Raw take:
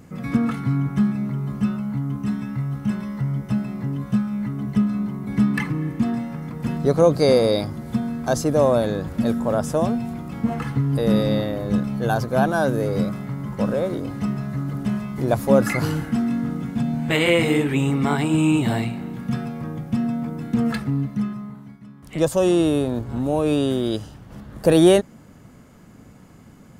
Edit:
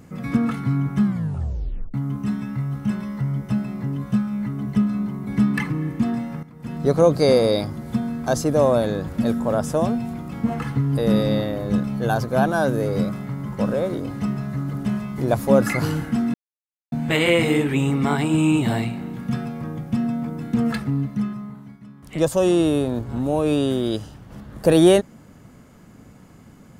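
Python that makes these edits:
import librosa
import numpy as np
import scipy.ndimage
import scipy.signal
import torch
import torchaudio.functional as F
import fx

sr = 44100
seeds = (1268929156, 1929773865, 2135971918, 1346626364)

y = fx.edit(x, sr, fx.tape_stop(start_s=1.04, length_s=0.9),
    fx.fade_in_from(start_s=6.43, length_s=0.45, curve='qua', floor_db=-13.5),
    fx.silence(start_s=16.34, length_s=0.58), tone=tone)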